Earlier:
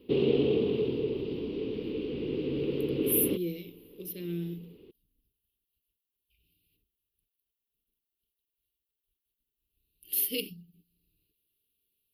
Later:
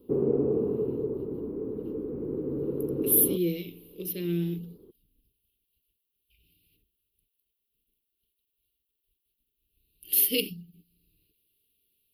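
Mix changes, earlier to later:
speech +6.0 dB; background: add steep low-pass 1.4 kHz 36 dB/octave

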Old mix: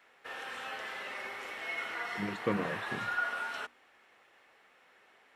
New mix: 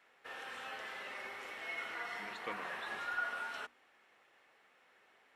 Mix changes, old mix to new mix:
speech: add band-pass filter 3.6 kHz, Q 0.65; background -4.5 dB

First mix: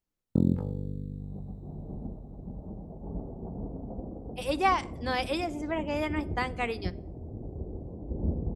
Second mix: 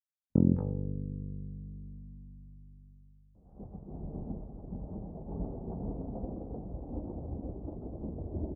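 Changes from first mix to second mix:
speech: muted; first sound: add low-pass 1.3 kHz 12 dB/octave; second sound: entry +2.25 s

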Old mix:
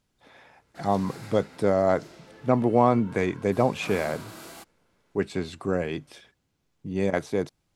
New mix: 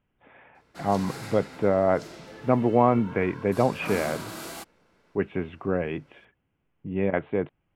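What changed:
speech: add steep low-pass 3.1 kHz 72 dB/octave; background +5.5 dB

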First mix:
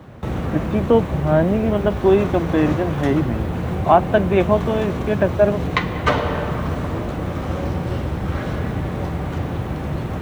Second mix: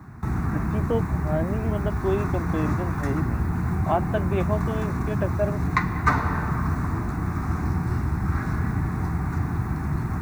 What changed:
speech -10.5 dB; background: add static phaser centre 1.3 kHz, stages 4

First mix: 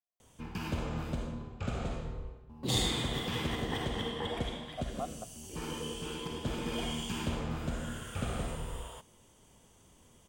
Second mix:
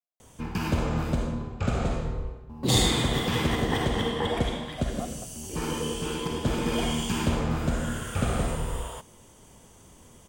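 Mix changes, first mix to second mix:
background +9.0 dB; master: add peaking EQ 3.1 kHz -3.5 dB 0.7 oct

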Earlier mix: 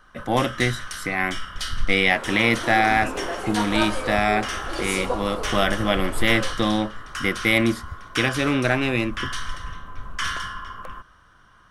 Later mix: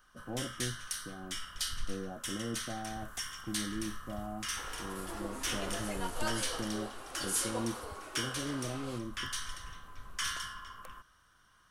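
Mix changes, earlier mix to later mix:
speech: add Gaussian low-pass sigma 14 samples; second sound: entry +2.45 s; master: add pre-emphasis filter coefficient 0.8

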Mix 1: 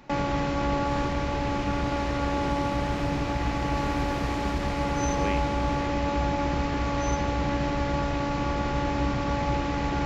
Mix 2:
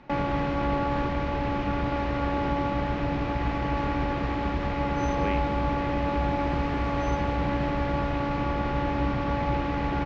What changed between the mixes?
second sound: entry +2.55 s; master: add low-pass 3.2 kHz 12 dB/octave

